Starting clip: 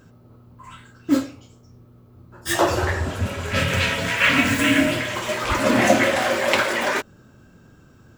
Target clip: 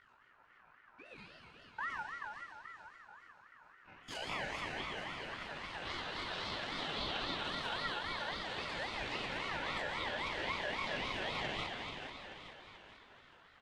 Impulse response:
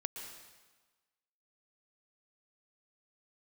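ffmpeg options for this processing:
-filter_complex "[0:a]alimiter=limit=-12.5dB:level=0:latency=1:release=25,acompressor=threshold=-30dB:ratio=3,aeval=exprs='sgn(val(0))*max(abs(val(0))-0.00188,0)':c=same,atempo=0.6,aeval=exprs='val(0)+0.00631*(sin(2*PI*50*n/s)+sin(2*PI*2*50*n/s)/2+sin(2*PI*3*50*n/s)/3+sin(2*PI*4*50*n/s)/4+sin(2*PI*5*50*n/s)/5)':c=same,highpass=230,lowpass=3.8k,aecho=1:1:434|868|1302|1736|2170|2604:0.447|0.223|0.112|0.0558|0.0279|0.014[a];[1:a]atrim=start_sample=2205[b];[a][b]afir=irnorm=-1:irlink=0,aeval=exprs='val(0)*sin(2*PI*1400*n/s+1400*0.2/3.7*sin(2*PI*3.7*n/s))':c=same,volume=-5dB"

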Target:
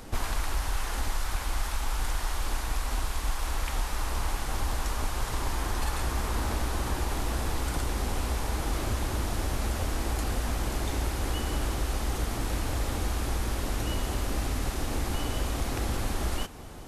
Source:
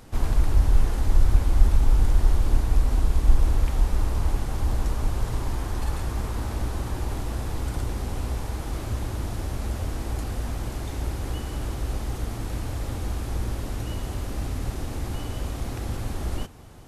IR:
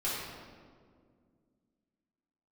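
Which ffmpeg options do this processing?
-filter_complex "[0:a]equalizer=f=110:t=o:w=1.1:g=-6.5,acrossover=split=800[a][b];[a]acompressor=threshold=-30dB:ratio=16[c];[c][b]amix=inputs=2:normalize=0,volume=5dB"

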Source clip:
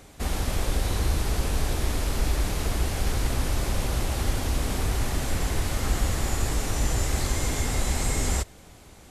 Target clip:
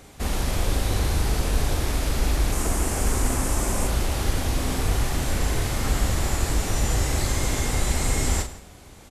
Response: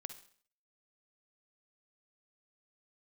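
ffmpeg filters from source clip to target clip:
-filter_complex "[0:a]asettb=1/sr,asplit=3[a][b][c];[a]atrim=end=2.524[d];[b]atrim=start=2.52:end=3.87,asetpts=PTS-STARTPTS,afade=t=in:d=0.004:c=qsin,afade=t=out:st=1.346:d=0.004:c=qsin,equalizer=f=125:t=o:w=1:g=-4,equalizer=f=250:t=o:w=1:g=4,equalizer=f=1k:t=o:w=1:g=3,equalizer=f=4k:t=o:w=1:g=-7,equalizer=f=8k:t=o:w=1:g=9[e];[c]atrim=start=3.866[f];[d][e]acrossfade=d=0.004:c1=hsin:c2=qsin[g];[g][f]acrossfade=d=0.004:c1=qsin:c2=hsin,asplit=2[h][i];[i]adelay=163.3,volume=-18dB,highshelf=f=4k:g=-3.67[j];[h][j]amix=inputs=2:normalize=0,asplit=2[k][l];[1:a]atrim=start_sample=2205,adelay=39[m];[l][m]afir=irnorm=-1:irlink=0,volume=-2.5dB[n];[k][n]amix=inputs=2:normalize=0,volume=1.5dB"

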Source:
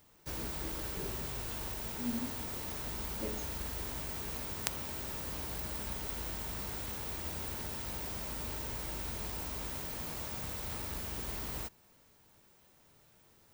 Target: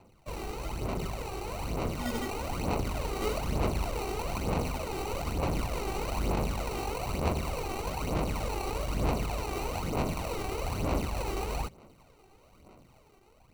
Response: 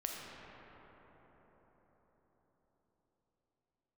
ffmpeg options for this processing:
-af "acrusher=samples=26:mix=1:aa=0.000001,dynaudnorm=f=750:g=5:m=4.5dB,aphaser=in_gain=1:out_gain=1:delay=2.6:decay=0.58:speed=1.1:type=sinusoidal"

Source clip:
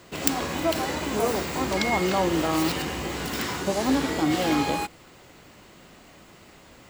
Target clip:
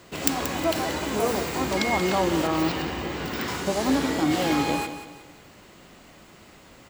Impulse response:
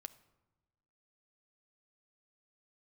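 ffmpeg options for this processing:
-filter_complex "[0:a]asettb=1/sr,asplit=3[a][b][c];[a]atrim=end=2.474[d];[b]atrim=start=2.47:end=3.48,asetpts=PTS-STARTPTS,afade=t=in:d=0.004:c=qsin,afade=t=out:st=1.006:d=0.004:c=qsin,equalizer=f=10k:t=o:w=1.4:g=-11.5[e];[c]atrim=start=3.476[f];[d][e]acrossfade=d=0.004:c1=hsin:c2=qsin[g];[g][f]acrossfade=d=0.004:c1=qsin:c2=hsin,aecho=1:1:182|364|546|728:0.282|0.104|0.0386|0.0143"

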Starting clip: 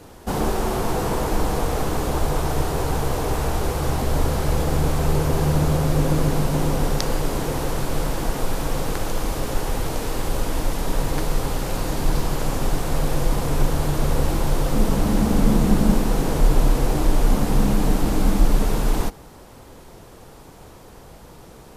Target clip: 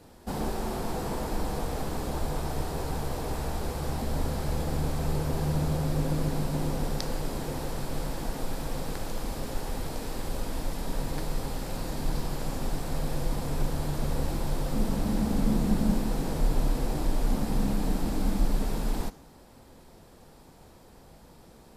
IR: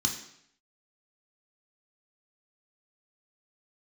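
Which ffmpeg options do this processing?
-filter_complex "[0:a]asplit=2[a][b];[b]highpass=f=130:w=0.5412,highpass=f=130:w=1.3066[c];[1:a]atrim=start_sample=2205[d];[c][d]afir=irnorm=-1:irlink=0,volume=-19dB[e];[a][e]amix=inputs=2:normalize=0,volume=-9dB"

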